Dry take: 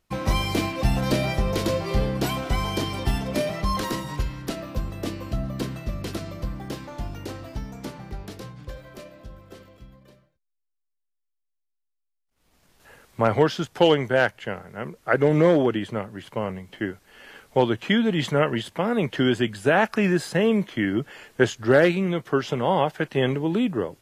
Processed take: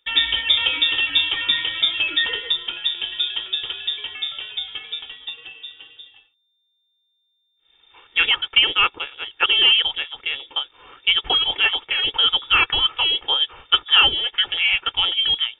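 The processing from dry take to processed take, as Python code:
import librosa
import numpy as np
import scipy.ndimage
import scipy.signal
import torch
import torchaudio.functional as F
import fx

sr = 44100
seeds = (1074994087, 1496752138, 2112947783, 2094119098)

y = fx.speed_glide(x, sr, from_pct=170, to_pct=138)
y = y + 0.6 * np.pad(y, (int(2.2 * sr / 1000.0), 0))[:len(y)]
y = fx.freq_invert(y, sr, carrier_hz=3600)
y = y * librosa.db_to_amplitude(1.5)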